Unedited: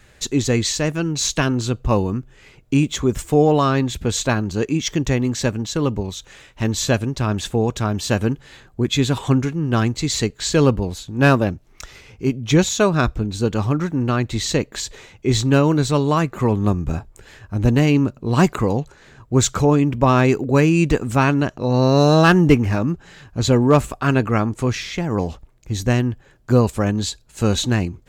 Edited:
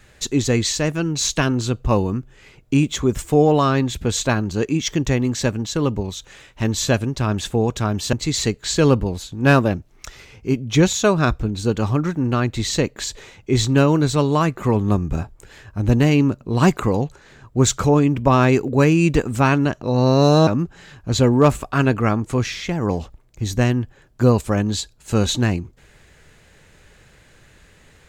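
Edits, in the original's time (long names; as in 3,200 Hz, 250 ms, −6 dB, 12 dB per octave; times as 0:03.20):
0:08.13–0:09.89: remove
0:22.23–0:22.76: remove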